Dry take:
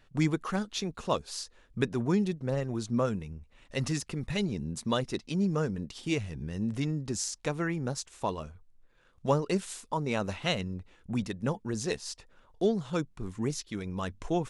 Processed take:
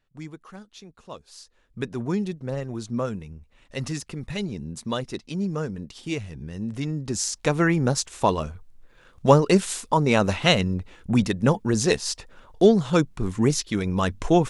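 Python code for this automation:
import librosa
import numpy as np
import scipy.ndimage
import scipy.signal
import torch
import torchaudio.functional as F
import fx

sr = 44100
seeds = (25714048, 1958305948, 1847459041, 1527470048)

y = fx.gain(x, sr, db=fx.line((1.06, -11.5), (2.01, 1.0), (6.72, 1.0), (7.63, 11.0)))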